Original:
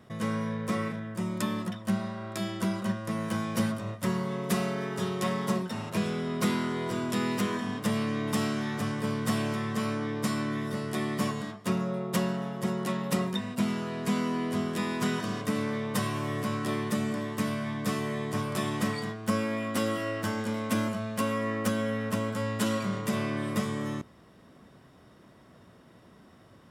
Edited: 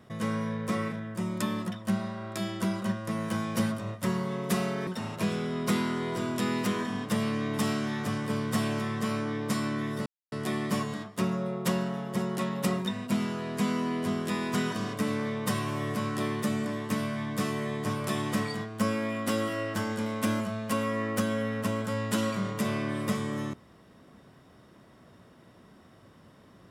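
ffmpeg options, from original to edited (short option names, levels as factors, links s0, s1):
-filter_complex "[0:a]asplit=3[s0][s1][s2];[s0]atrim=end=4.872[s3];[s1]atrim=start=5.608:end=10.8,asetpts=PTS-STARTPTS,afade=t=out:st=5.188:d=0.004:c=hsin,apad=pad_dur=0.26[s4];[s2]atrim=start=10.8,asetpts=PTS-STARTPTS,afade=t=in:d=0.004:c=hsin[s5];[s4][s5]concat=n=2:v=0:a=1[s6];[s3][s6]acrossfade=d=0.004:c1=hsin:c2=hsin"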